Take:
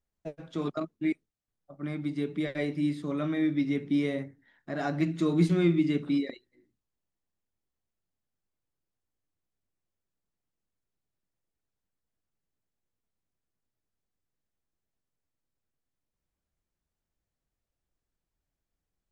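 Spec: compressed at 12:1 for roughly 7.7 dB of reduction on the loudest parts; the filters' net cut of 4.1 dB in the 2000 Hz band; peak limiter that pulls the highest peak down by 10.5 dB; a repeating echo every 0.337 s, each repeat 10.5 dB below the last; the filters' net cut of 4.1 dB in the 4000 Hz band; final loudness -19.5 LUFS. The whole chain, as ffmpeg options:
-af "equalizer=f=2k:t=o:g=-4,equalizer=f=4k:t=o:g=-3.5,acompressor=threshold=-26dB:ratio=12,alimiter=level_in=5.5dB:limit=-24dB:level=0:latency=1,volume=-5.5dB,aecho=1:1:337|674|1011:0.299|0.0896|0.0269,volume=19dB"

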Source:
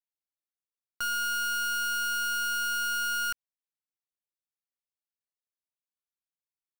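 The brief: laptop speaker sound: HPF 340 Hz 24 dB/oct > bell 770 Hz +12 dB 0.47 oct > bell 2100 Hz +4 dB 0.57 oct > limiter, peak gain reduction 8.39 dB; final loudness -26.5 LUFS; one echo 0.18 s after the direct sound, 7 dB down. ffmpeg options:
-af "highpass=f=340:w=0.5412,highpass=f=340:w=1.3066,equalizer=f=770:t=o:w=0.47:g=12,equalizer=f=2.1k:t=o:w=0.57:g=4,aecho=1:1:180:0.447,volume=7.5dB,alimiter=limit=-24dB:level=0:latency=1"

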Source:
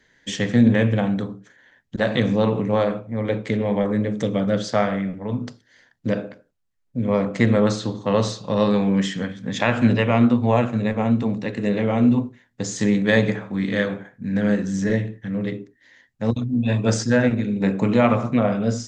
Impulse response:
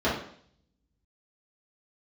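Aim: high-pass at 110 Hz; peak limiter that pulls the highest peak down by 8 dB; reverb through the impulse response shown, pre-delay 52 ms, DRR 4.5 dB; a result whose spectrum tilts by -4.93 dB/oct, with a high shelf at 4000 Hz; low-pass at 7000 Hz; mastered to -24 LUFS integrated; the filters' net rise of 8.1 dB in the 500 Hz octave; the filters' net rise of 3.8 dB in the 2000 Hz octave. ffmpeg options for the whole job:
-filter_complex "[0:a]highpass=110,lowpass=7k,equalizer=f=500:t=o:g=9,equalizer=f=2k:t=o:g=5.5,highshelf=f=4k:g=-7,alimiter=limit=-7dB:level=0:latency=1,asplit=2[a][b];[1:a]atrim=start_sample=2205,adelay=52[c];[b][c]afir=irnorm=-1:irlink=0,volume=-19dB[d];[a][d]amix=inputs=2:normalize=0,volume=-7.5dB"

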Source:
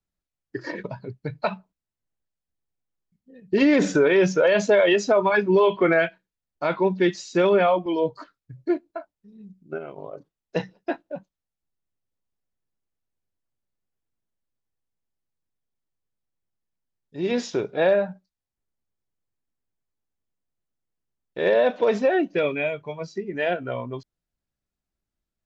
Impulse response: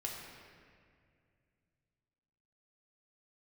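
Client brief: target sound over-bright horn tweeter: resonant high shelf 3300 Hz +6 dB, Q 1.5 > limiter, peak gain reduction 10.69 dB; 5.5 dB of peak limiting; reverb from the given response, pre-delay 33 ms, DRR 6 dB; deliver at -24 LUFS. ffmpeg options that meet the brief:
-filter_complex "[0:a]alimiter=limit=-14.5dB:level=0:latency=1,asplit=2[a][b];[1:a]atrim=start_sample=2205,adelay=33[c];[b][c]afir=irnorm=-1:irlink=0,volume=-6.5dB[d];[a][d]amix=inputs=2:normalize=0,highshelf=f=3.3k:t=q:w=1.5:g=6,volume=7dB,alimiter=limit=-14.5dB:level=0:latency=1"

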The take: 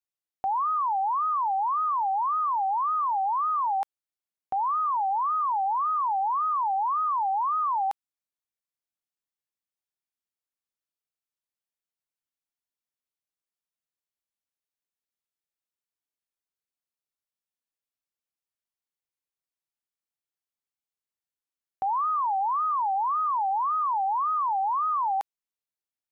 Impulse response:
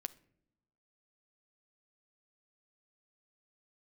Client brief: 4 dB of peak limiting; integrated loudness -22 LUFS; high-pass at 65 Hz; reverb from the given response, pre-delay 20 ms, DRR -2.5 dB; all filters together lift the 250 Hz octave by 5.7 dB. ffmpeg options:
-filter_complex "[0:a]highpass=65,equalizer=f=250:t=o:g=7.5,alimiter=level_in=1dB:limit=-24dB:level=0:latency=1,volume=-1dB,asplit=2[a][b];[1:a]atrim=start_sample=2205,adelay=20[c];[b][c]afir=irnorm=-1:irlink=0,volume=5dB[d];[a][d]amix=inputs=2:normalize=0,volume=2dB"

